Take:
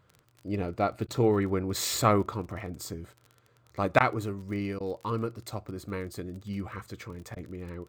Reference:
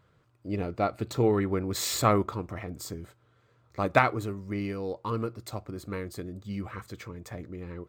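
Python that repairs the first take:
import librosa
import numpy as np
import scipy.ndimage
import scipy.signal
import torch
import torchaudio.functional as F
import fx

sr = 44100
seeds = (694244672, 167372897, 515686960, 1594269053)

y = fx.fix_declick_ar(x, sr, threshold=6.5)
y = fx.fix_interpolate(y, sr, at_s=(1.07, 3.99, 4.79, 7.35), length_ms=12.0)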